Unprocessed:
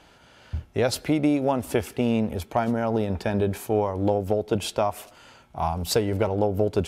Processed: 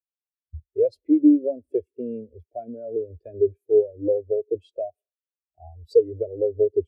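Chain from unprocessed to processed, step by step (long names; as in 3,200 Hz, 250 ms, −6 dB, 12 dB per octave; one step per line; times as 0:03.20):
phaser with its sweep stopped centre 420 Hz, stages 4
every bin expanded away from the loudest bin 2.5 to 1
level +4 dB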